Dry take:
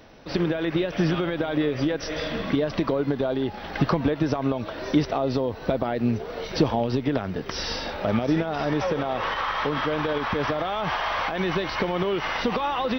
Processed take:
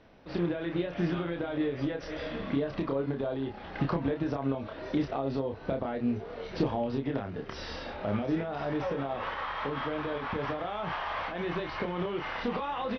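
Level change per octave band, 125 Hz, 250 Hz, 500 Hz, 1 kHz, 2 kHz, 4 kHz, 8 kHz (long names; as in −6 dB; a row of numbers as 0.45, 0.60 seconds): −7.0 dB, −6.5 dB, −7.0 dB, −7.5 dB, −8.5 dB, −11.0 dB, below −15 dB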